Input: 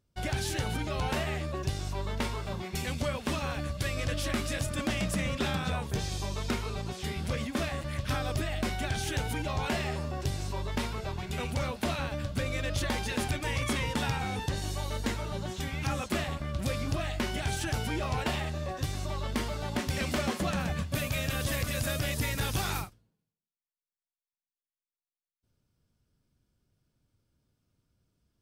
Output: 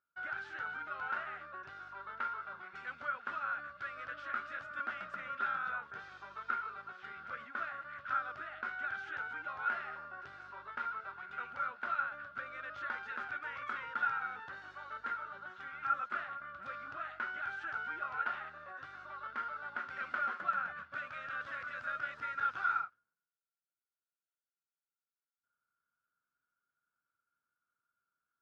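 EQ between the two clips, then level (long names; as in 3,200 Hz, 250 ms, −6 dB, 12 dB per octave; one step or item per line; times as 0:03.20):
resonant band-pass 1,400 Hz, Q 16
high-frequency loss of the air 130 metres
+13.0 dB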